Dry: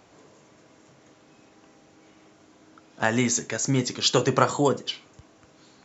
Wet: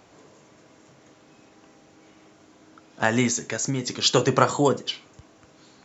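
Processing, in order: 3.27–3.88 compressor, threshold -24 dBFS, peak gain reduction 7 dB; gain +1.5 dB

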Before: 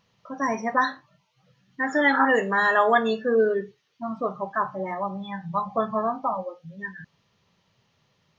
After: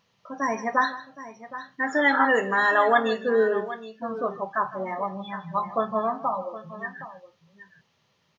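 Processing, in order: low shelf 160 Hz -8 dB; on a send: tapped delay 0.156/0.767 s -16.5/-14.5 dB

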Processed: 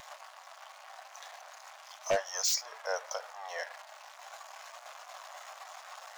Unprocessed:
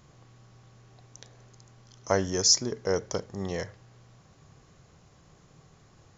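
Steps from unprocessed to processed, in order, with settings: zero-crossing step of -31.5 dBFS; steep high-pass 610 Hz 48 dB/oct; high shelf 5400 Hz -4.5 dB; wavefolder -23.5 dBFS; spectral expander 1.5:1; gain +4.5 dB

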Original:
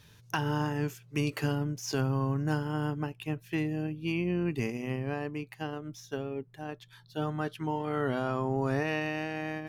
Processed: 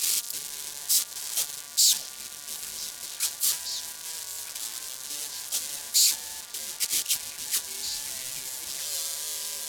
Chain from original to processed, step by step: infinite clipping; RIAA curve recording; gate -22 dBFS, range -11 dB; LPF 11000 Hz 12 dB/oct; limiter -24 dBFS, peak gain reduction 6.5 dB; resonant high shelf 3700 Hz +11.5 dB, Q 1.5; ring modulator 1300 Hz; delay with a stepping band-pass 0.625 s, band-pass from 650 Hz, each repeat 1.4 oct, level -5 dB

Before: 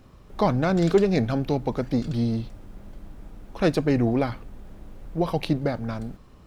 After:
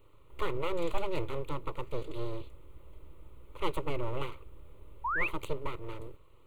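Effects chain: full-wave rectifier; fixed phaser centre 1100 Hz, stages 8; painted sound rise, 5.04–5.28, 880–2800 Hz -26 dBFS; gain -5.5 dB

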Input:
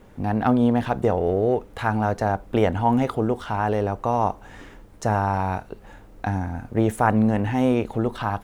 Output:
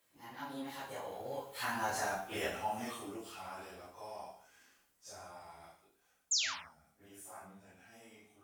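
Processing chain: phase scrambler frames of 0.1 s; Doppler pass-by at 2.04, 41 m/s, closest 19 m; low shelf 160 Hz +10 dB; painted sound fall, 6.31–6.55, 790–7700 Hz -34 dBFS; differentiator; non-linear reverb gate 0.22 s falling, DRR 2 dB; gain +5 dB

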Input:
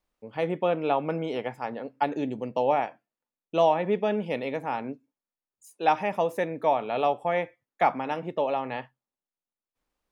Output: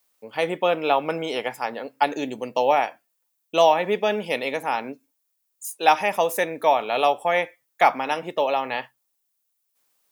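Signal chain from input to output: RIAA curve recording; gain +6 dB

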